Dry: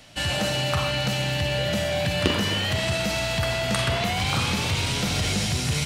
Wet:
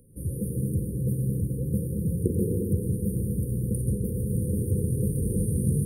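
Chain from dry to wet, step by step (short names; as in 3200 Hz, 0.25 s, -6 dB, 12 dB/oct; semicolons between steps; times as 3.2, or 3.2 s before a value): brick-wall FIR band-stop 530–8800 Hz; bell 280 Hz -6 dB 0.42 oct; reverb RT60 1.9 s, pre-delay 0.1 s, DRR 0.5 dB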